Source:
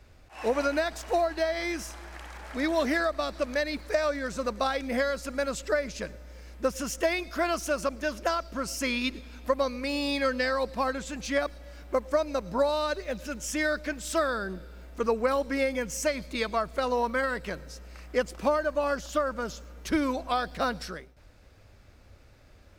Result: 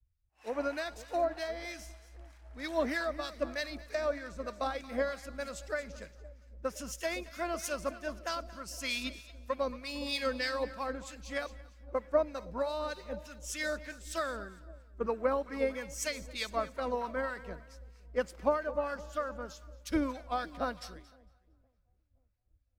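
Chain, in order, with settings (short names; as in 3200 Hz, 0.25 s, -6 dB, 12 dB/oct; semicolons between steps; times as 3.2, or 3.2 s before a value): split-band echo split 730 Hz, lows 0.516 s, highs 0.229 s, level -12 dB; harmonic tremolo 3.2 Hz, depth 50%, crossover 1100 Hz; three-band expander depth 100%; gain -5.5 dB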